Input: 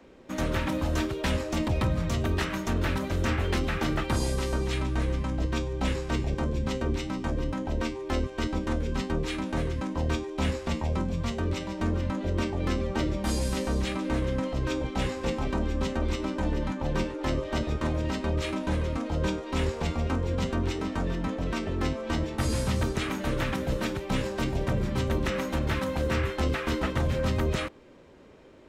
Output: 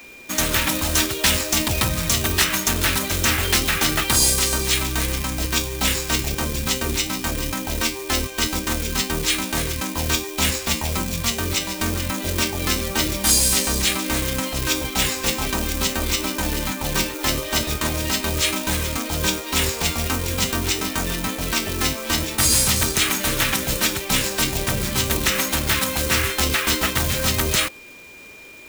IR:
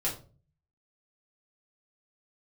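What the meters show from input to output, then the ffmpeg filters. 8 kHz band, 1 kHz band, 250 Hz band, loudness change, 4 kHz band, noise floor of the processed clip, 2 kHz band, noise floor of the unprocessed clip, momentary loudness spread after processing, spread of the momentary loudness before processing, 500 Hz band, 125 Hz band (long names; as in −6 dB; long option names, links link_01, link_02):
+23.0 dB, +7.0 dB, +2.5 dB, +9.0 dB, +17.0 dB, −33 dBFS, +11.5 dB, −40 dBFS, 6 LU, 3 LU, +2.5 dB, +2.0 dB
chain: -filter_complex "[0:a]asplit=2[link_01][link_02];[link_02]acrusher=bits=3:mode=log:mix=0:aa=0.000001,volume=-4dB[link_03];[link_01][link_03]amix=inputs=2:normalize=0,crystalizer=i=10:c=0,aeval=exprs='val(0)+0.0112*sin(2*PI*2400*n/s)':channel_layout=same,bandreject=frequency=540:width=17,volume=-2.5dB"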